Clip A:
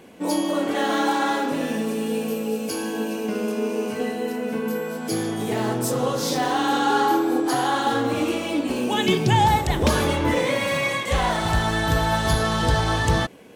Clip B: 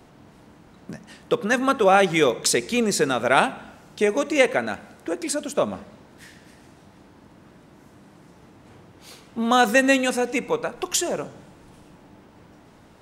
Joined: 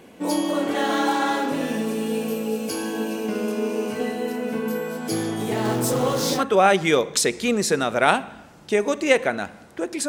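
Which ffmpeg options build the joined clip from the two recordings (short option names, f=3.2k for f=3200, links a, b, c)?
-filter_complex "[0:a]asettb=1/sr,asplit=3[a][b][c];[a]atrim=end=5.654[d];[b]atrim=start=5.65:end=6.45,asetpts=PTS-STARTPTS,afade=t=in:d=0.004:c=qsin,afade=t=out:st=0.796:d=0.004:c=qsin,aeval=exprs='val(0)+0.5*0.0316*sgn(val(0))':c=same[e];[c]atrim=start=6.446[f];[d][e]acrossfade=d=0.004:c1=hsin:c2=qsin[g];[g][f]acrossfade=d=0.004:c1=qsin:c2=hsin,apad=whole_dur=10.08,atrim=end=10.08,atrim=end=6.45,asetpts=PTS-STARTPTS[h];[1:a]atrim=start=1.62:end=5.37,asetpts=PTS-STARTPTS[i];[h][i]acrossfade=d=0.12:c1=tri:c2=tri"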